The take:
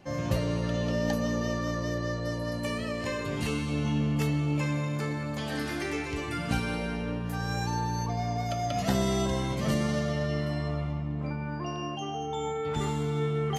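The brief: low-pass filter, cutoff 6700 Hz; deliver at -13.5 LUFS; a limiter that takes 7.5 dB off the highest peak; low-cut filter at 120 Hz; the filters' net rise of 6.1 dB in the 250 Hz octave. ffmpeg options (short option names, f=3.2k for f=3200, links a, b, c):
-af "highpass=120,lowpass=6.7k,equalizer=f=250:t=o:g=8.5,volume=15dB,alimiter=limit=-3.5dB:level=0:latency=1"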